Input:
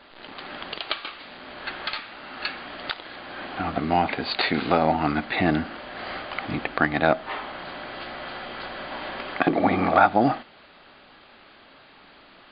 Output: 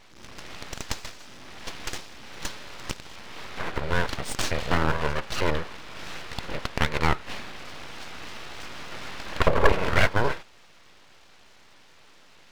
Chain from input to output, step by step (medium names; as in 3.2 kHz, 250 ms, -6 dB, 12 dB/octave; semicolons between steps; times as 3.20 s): 9.26–9.72 s: small resonant body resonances 210/850 Hz, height 13 dB; full-wave rectifier; trim -1 dB